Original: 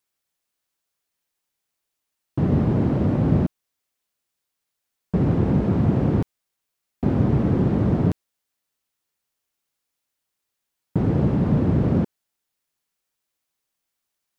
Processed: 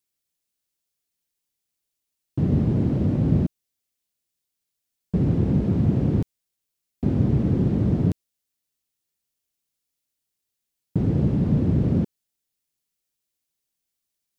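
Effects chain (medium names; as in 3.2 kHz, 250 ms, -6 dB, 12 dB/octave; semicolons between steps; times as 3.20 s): peaking EQ 1.1 kHz -10 dB 2.3 oct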